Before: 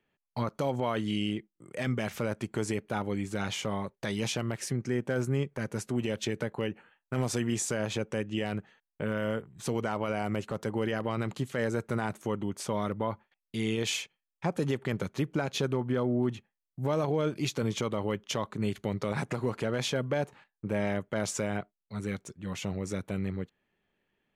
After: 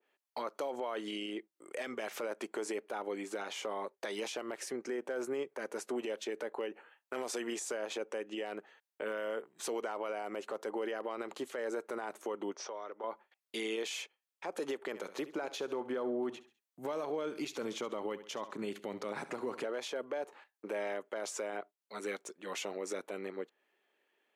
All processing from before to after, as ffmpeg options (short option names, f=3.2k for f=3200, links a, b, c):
-filter_complex "[0:a]asettb=1/sr,asplit=3[a][b][c];[a]atrim=end=12.544[d];[b]atrim=start=12.54:end=13.04,asetpts=PTS-STARTPTS,afade=t=in:d=0.004:c=qsin,afade=t=out:st=0.496:d=0.004:c=qsin,acrossover=split=300 3400:gain=0.178 1 0.0891[e][f][g];[e][f][g]amix=inputs=3:normalize=0,acompressor=threshold=-44dB:ratio=3:attack=3.2:release=140:knee=1:detection=peak,lowpass=f=5.8k:t=q:w=14[h];[c]atrim=start=13.036[i];[d][h]acrossfade=d=0.004:c1=hsin:c2=qsin[j];[j][i]acrossfade=d=0.004:c1=qsin:c2=hsin,asettb=1/sr,asplit=3[k][l][m];[k]atrim=end=14.874[n];[l]atrim=start=14.87:end=19.64,asetpts=PTS-STARTPTS,afade=t=in:d=0.004:c=qsin,afade=t=out:st=4.766:d=0.004:c=qsin,asubboost=boost=5.5:cutoff=200,aecho=1:1:68|136|204:0.141|0.0494|0.0173,atrim=end_sample=210357[o];[m]atrim=start=19.636[p];[n][o]acrossfade=d=0.004:c1=hsin:c2=qsin[q];[q][p]acrossfade=d=0.004:c1=qsin:c2=hsin,highpass=f=350:w=0.5412,highpass=f=350:w=1.3066,alimiter=level_in=6.5dB:limit=-24dB:level=0:latency=1:release=88,volume=-6.5dB,adynamicequalizer=threshold=0.00158:dfrequency=1500:dqfactor=0.7:tfrequency=1500:tqfactor=0.7:attack=5:release=100:ratio=0.375:range=2.5:mode=cutabove:tftype=highshelf,volume=2.5dB"